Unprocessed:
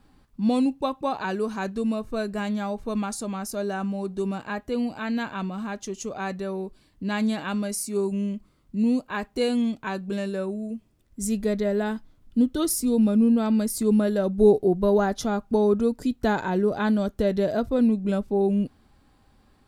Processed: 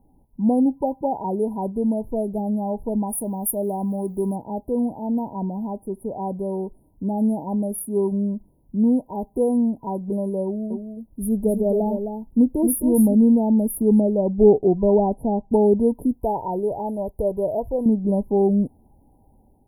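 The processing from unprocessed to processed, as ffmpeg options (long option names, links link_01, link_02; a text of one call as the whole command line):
ffmpeg -i in.wav -filter_complex "[0:a]asettb=1/sr,asplit=3[link_01][link_02][link_03];[link_01]atrim=end=3.094[link_04];[link_02]atrim=start=3.09:end=4.36,asetpts=PTS-STARTPTS,afade=type=in:duration=0.004:curve=qsin,afade=type=out:start_time=1.266:duration=0.004:curve=qsin,aemphasis=mode=production:type=50fm[link_05];[link_03]atrim=start=4.356[link_06];[link_04][link_05]acrossfade=duration=0.004:curve1=hsin:curve2=qsin[link_07];[link_07][link_06]acrossfade=duration=0.004:curve1=qsin:curve2=hsin,asettb=1/sr,asplit=3[link_08][link_09][link_10];[link_08]atrim=end=10.444[link_11];[link_09]atrim=start=10.44:end=13.14,asetpts=PTS-STARTPTS,afade=type=in:duration=0.004:curve=qsin,afade=type=out:start_time=2.696:duration=0.004:curve=qsin,aecho=1:1:263:0.447,atrim=end_sample=119070[link_12];[link_10]atrim=start=13.136[link_13];[link_11][link_12]acrossfade=duration=0.004:curve1=hsin:curve2=qsin[link_14];[link_14][link_13]acrossfade=duration=0.004:curve1=qsin:curve2=hsin,asettb=1/sr,asplit=3[link_15][link_16][link_17];[link_15]atrim=end=14.004[link_18];[link_16]atrim=start=14:end=15.51,asetpts=PTS-STARTPTS,afade=type=in:duration=0.004:curve=qsin,afade=type=out:start_time=1.506:duration=0.004:curve=qsin,lowpass=frequency=2300:poles=1[link_19];[link_17]atrim=start=15.506[link_20];[link_18][link_19]acrossfade=duration=0.004:curve1=hsin:curve2=qsin[link_21];[link_21][link_20]acrossfade=duration=0.004:curve1=qsin:curve2=hsin,asettb=1/sr,asplit=3[link_22][link_23][link_24];[link_22]atrim=end=16.204[link_25];[link_23]atrim=start=16.2:end=17.86,asetpts=PTS-STARTPTS,afade=type=in:duration=0.004:curve=qsin,afade=type=out:start_time=1.656:duration=0.004:curve=qsin,equalizer=frequency=230:width_type=o:width=1.1:gain=-12.5[link_26];[link_24]atrim=start=17.856[link_27];[link_25][link_26]acrossfade=duration=0.004:curve1=hsin:curve2=qsin[link_28];[link_28][link_27]acrossfade=duration=0.004:curve1=qsin:curve2=hsin,afftfilt=real='re*(1-between(b*sr/4096,1000,9600))':imag='im*(1-between(b*sr/4096,1000,9600))':win_size=4096:overlap=0.75,dynaudnorm=framelen=170:gausssize=5:maxgain=4dB" out.wav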